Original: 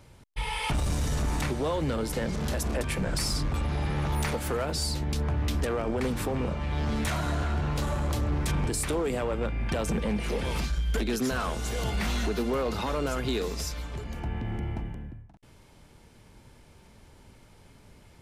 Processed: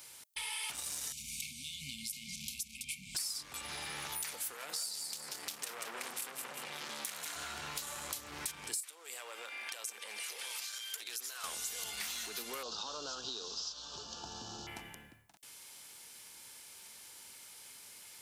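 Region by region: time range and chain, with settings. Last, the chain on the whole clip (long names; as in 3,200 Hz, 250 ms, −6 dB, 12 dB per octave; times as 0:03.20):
0:01.12–0:03.15: linear-phase brick-wall band-stop 260–2,100 Hz + high-shelf EQ 3,600 Hz −9 dB
0:04.54–0:07.36: high-pass filter 130 Hz 24 dB per octave + repeating echo 186 ms, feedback 34%, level −5 dB + saturating transformer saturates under 1,400 Hz
0:08.80–0:11.44: Bessel high-pass filter 520 Hz, order 4 + downward compressor 4 to 1, threshold −39 dBFS
0:12.63–0:14.67: variable-slope delta modulation 32 kbit/s + Butterworth band-reject 2,100 Hz, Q 1.1
whole clip: first difference; notch filter 630 Hz, Q 17; downward compressor 4 to 1, threshold −54 dBFS; level +14 dB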